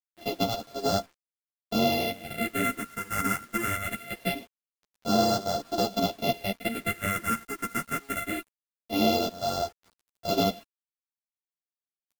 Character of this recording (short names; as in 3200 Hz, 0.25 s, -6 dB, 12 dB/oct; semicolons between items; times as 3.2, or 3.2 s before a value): a buzz of ramps at a fixed pitch in blocks of 64 samples; phasing stages 4, 0.23 Hz, lowest notch 660–2200 Hz; a quantiser's noise floor 10-bit, dither none; a shimmering, thickened sound